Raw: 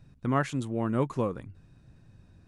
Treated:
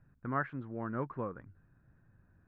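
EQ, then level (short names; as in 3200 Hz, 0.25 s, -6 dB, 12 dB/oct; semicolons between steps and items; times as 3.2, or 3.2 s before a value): ladder low-pass 1800 Hz, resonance 55%; 0.0 dB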